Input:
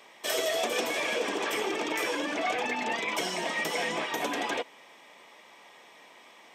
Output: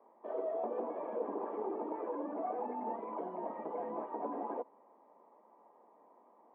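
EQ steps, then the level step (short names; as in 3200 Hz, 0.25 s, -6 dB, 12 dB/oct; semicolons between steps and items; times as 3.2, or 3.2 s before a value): Chebyshev band-pass 210–1000 Hz, order 3; -5.5 dB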